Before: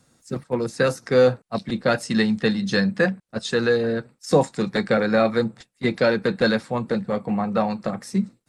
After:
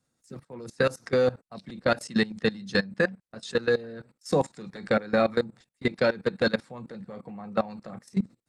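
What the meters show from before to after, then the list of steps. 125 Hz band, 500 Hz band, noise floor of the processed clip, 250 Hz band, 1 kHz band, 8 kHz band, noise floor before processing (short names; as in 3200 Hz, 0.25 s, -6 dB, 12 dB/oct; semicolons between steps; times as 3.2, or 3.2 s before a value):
-7.5 dB, -5.5 dB, -79 dBFS, -7.5 dB, -6.0 dB, -7.5 dB, -67 dBFS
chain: level quantiser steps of 19 dB; gain -1.5 dB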